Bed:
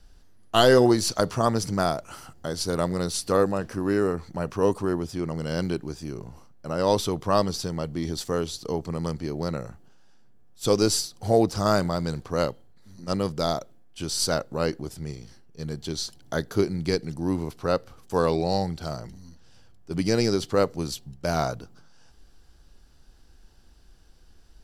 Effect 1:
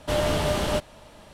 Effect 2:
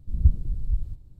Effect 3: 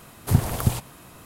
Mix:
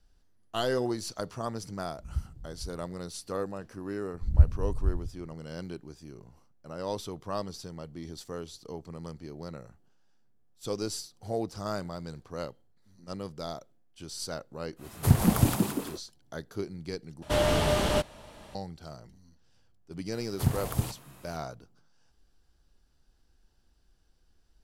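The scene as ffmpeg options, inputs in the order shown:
-filter_complex "[2:a]asplit=2[s0][s1];[3:a]asplit=2[s2][s3];[0:a]volume=0.251[s4];[s0]highpass=49[s5];[s1]equalizer=f=82:w=1.5:g=6.5[s6];[s2]asplit=7[s7][s8][s9][s10][s11][s12][s13];[s8]adelay=170,afreqshift=82,volume=0.631[s14];[s9]adelay=340,afreqshift=164,volume=0.292[s15];[s10]adelay=510,afreqshift=246,volume=0.133[s16];[s11]adelay=680,afreqshift=328,volume=0.0617[s17];[s12]adelay=850,afreqshift=410,volume=0.0282[s18];[s13]adelay=1020,afreqshift=492,volume=0.013[s19];[s7][s14][s15][s16][s17][s18][s19]amix=inputs=7:normalize=0[s20];[s4]asplit=2[s21][s22];[s21]atrim=end=17.224[s23];[1:a]atrim=end=1.33,asetpts=PTS-STARTPTS,volume=0.891[s24];[s22]atrim=start=18.546[s25];[s5]atrim=end=1.19,asetpts=PTS-STARTPTS,volume=0.237,afade=t=in:d=0.004:c=hsin,afade=t=out:st=1.186:d=0.004:c=hsin,adelay=1910[s26];[s6]atrim=end=1.19,asetpts=PTS-STARTPTS,volume=0.596,afade=t=in:d=0.004:c=hsin,afade=t=out:st=1.186:d=0.004:c=hsin,adelay=4140[s27];[s20]atrim=end=1.25,asetpts=PTS-STARTPTS,volume=0.794,afade=t=in:d=0.1,afade=t=out:st=1.15:d=0.1,adelay=650916S[s28];[s3]atrim=end=1.25,asetpts=PTS-STARTPTS,volume=0.422,afade=t=in:d=0.004:c=hsin,afade=t=out:st=1.246:d=0.004:c=hsin,adelay=20120[s29];[s23][s24]acrossfade=d=0.004:c1=hsin:c2=hsin[s30];[s30][s25]acrossfade=d=0.004:c1=hsin:c2=hsin[s31];[s31][s26][s27][s28][s29]amix=inputs=5:normalize=0"

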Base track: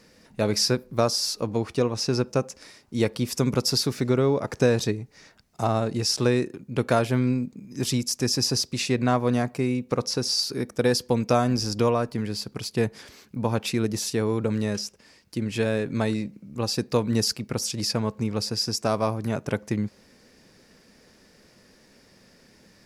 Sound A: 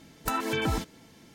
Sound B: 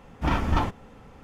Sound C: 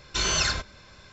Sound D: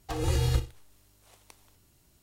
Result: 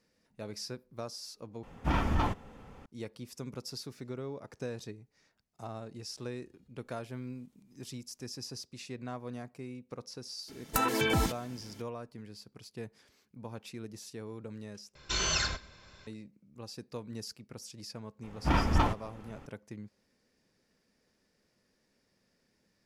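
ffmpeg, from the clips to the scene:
-filter_complex "[2:a]asplit=2[s0][s1];[0:a]volume=0.119[s2];[s0]alimiter=level_in=5.31:limit=0.891:release=50:level=0:latency=1[s3];[4:a]acompressor=threshold=0.00158:ratio=6:attack=3.2:release=140:knee=1:detection=peak[s4];[1:a]highshelf=f=7300:g=5[s5];[3:a]aecho=1:1:122:0.0841[s6];[s2]asplit=3[s7][s8][s9];[s7]atrim=end=1.634[s10];[s3]atrim=end=1.23,asetpts=PTS-STARTPTS,volume=0.133[s11];[s8]atrim=start=2.856:end=14.954[s12];[s6]atrim=end=1.12,asetpts=PTS-STARTPTS,volume=0.531[s13];[s9]atrim=start=16.066[s14];[s4]atrim=end=2.22,asetpts=PTS-STARTPTS,volume=0.141,afade=t=in:d=0.004:c=hsin,afade=t=out:st=2.216:d=0.004:c=hsin,adelay=6120[s15];[s5]atrim=end=1.34,asetpts=PTS-STARTPTS,afade=t=in:d=0.004:c=hsin,afade=t=out:st=1.336:d=0.004:c=hsin,adelay=10480[s16];[s1]atrim=end=1.23,asetpts=PTS-STARTPTS,volume=0.75,afade=t=in:d=0.004:c=hsin,afade=t=out:st=1.226:d=0.004:c=hsin,adelay=18230[s17];[s10][s11]acrossfade=d=0.004:c1=hsin:c2=hsin[s18];[s18][s12]acrossfade=d=0.004:c1=hsin:c2=hsin[s19];[s19][s13]acrossfade=d=0.004:c1=hsin:c2=hsin[s20];[s20][s14]acrossfade=d=0.004:c1=hsin:c2=hsin[s21];[s21][s15][s16][s17]amix=inputs=4:normalize=0"

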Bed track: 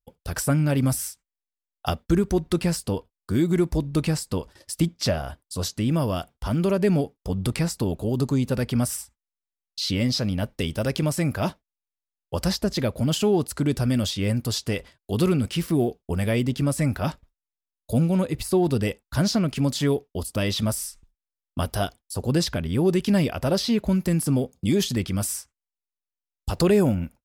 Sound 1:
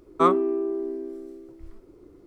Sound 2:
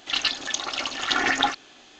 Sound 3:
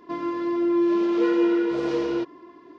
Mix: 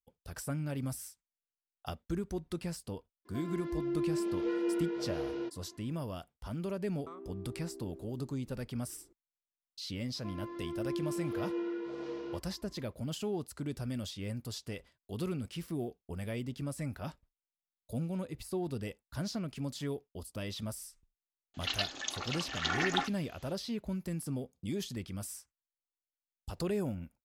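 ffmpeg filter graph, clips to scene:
-filter_complex "[3:a]asplit=2[s0][s1];[0:a]volume=0.178[s2];[s0]bandreject=f=1100:w=6.4[s3];[1:a]acompressor=threshold=0.0355:ratio=6:attack=3.2:release=140:knee=1:detection=peak[s4];[s3]atrim=end=2.78,asetpts=PTS-STARTPTS,volume=0.251,afade=t=in:d=0.004:c=hsin,afade=t=out:st=2.776:d=0.004:c=hsin,adelay=143325S[s5];[s4]atrim=end=2.26,asetpts=PTS-STARTPTS,volume=0.178,afade=t=in:d=0.004:c=hsin,afade=t=out:st=2.256:d=0.004:c=hsin,adelay=6870[s6];[s1]atrim=end=2.78,asetpts=PTS-STARTPTS,volume=0.168,afade=t=in:d=0.004:c=hsin,afade=t=out:st=2.776:d=0.004:c=hsin,adelay=10150[s7];[2:a]atrim=end=1.99,asetpts=PTS-STARTPTS,volume=0.316,afade=t=in:d=0.004:c=hsin,afade=t=out:st=1.986:d=0.004:c=hsin,adelay=21540[s8];[s2][s5][s6][s7][s8]amix=inputs=5:normalize=0"

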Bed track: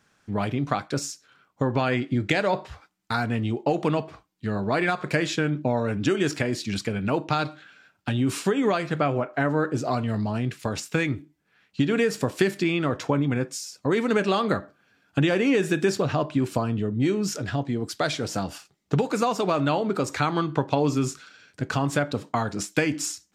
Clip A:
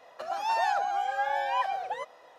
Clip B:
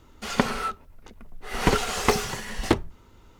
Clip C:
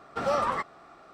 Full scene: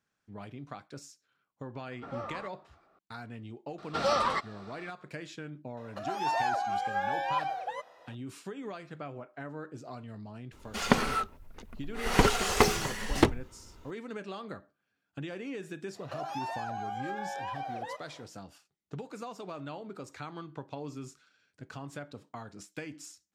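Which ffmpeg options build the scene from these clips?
-filter_complex "[3:a]asplit=2[s0][s1];[1:a]asplit=2[s2][s3];[0:a]volume=0.126[s4];[s0]aemphasis=mode=reproduction:type=75fm[s5];[s1]equalizer=f=4200:t=o:w=1.1:g=11[s6];[s3]acompressor=threshold=0.02:ratio=6:attack=3.2:release=140:knee=1:detection=peak[s7];[s5]atrim=end=1.13,asetpts=PTS-STARTPTS,volume=0.211,afade=t=in:d=0.004:c=hsin,afade=t=out:st=1.126:d=0.004:c=hsin,adelay=1860[s8];[s6]atrim=end=1.13,asetpts=PTS-STARTPTS,volume=0.841,afade=t=in:d=0.004:c=hsin,afade=t=out:st=1.126:d=0.004:c=hsin,adelay=3780[s9];[s2]atrim=end=2.38,asetpts=PTS-STARTPTS,volume=0.75,afade=t=in:d=0.004:c=hsin,afade=t=out:st=2.376:d=0.004:c=hsin,adelay=254457S[s10];[2:a]atrim=end=3.39,asetpts=PTS-STARTPTS,volume=0.841,afade=t=in:d=0.004:c=hsin,afade=t=out:st=3.386:d=0.004:c=hsin,adelay=10520[s11];[s7]atrim=end=2.38,asetpts=PTS-STARTPTS,volume=0.944,afade=t=in:d=0.1,afade=t=out:st=2.28:d=0.1,adelay=15920[s12];[s4][s8][s9][s10][s11][s12]amix=inputs=6:normalize=0"

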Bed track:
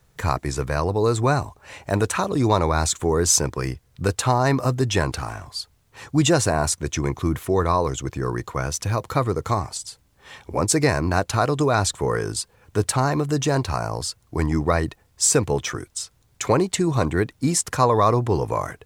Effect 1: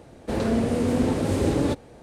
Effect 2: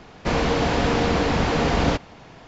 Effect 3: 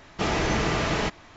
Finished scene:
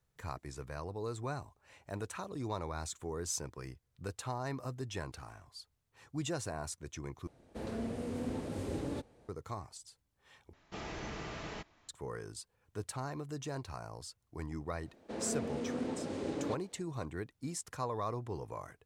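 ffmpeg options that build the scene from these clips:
-filter_complex "[1:a]asplit=2[s0][s1];[0:a]volume=0.106[s2];[s1]acrossover=split=160 7900:gain=0.2 1 0.0631[s3][s4][s5];[s3][s4][s5]amix=inputs=3:normalize=0[s6];[s2]asplit=3[s7][s8][s9];[s7]atrim=end=7.274[s10];[s0]atrim=end=2.02,asetpts=PTS-STARTPTS,volume=0.168[s11];[s8]atrim=start=9.286:end=10.534[s12];[3:a]atrim=end=1.36,asetpts=PTS-STARTPTS,volume=0.126[s13];[s9]atrim=start=11.886[s14];[s6]atrim=end=2.02,asetpts=PTS-STARTPTS,volume=0.211,afade=t=in:d=0.004:c=hsin,afade=t=out:st=2.016:d=0.004:c=hsin,adelay=14810[s15];[s10][s11]acrossfade=d=0.004:c1=hsin:c2=hsin[s16];[s16][s12]acrossfade=d=0.004:c1=hsin:c2=hsin[s17];[s17][s13]acrossfade=d=0.004:c1=hsin:c2=hsin[s18];[s18][s14]acrossfade=d=0.004:c1=hsin:c2=hsin[s19];[s19][s15]amix=inputs=2:normalize=0"

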